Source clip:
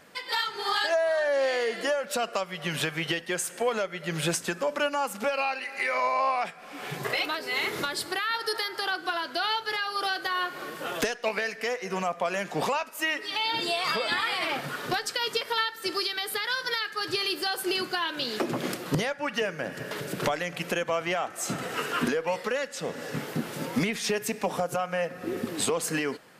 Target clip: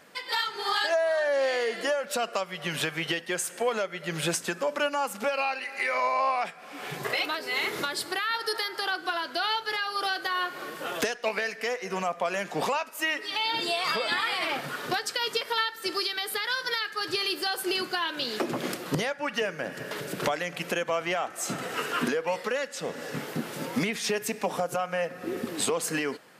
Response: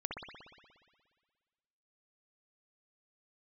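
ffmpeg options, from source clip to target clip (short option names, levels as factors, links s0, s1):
-af "lowshelf=f=88:g=-11"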